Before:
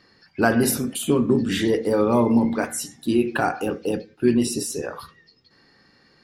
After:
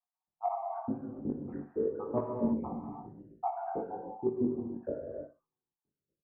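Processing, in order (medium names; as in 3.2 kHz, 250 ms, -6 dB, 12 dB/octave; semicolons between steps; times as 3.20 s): random holes in the spectrogram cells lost 81%; gate -53 dBFS, range -29 dB; steep low-pass 1 kHz 36 dB/octave; peaking EQ 370 Hz +3.5 dB; reverse; compression 5:1, threshold -34 dBFS, peak gain reduction 19 dB; reverse; chorus 0.96 Hz, delay 18 ms, depth 4.6 ms; on a send: feedback delay 62 ms, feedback 19%, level -13 dB; on the sum: gated-style reverb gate 350 ms flat, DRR 0.5 dB; vibrato 0.98 Hz 31 cents; trim +6.5 dB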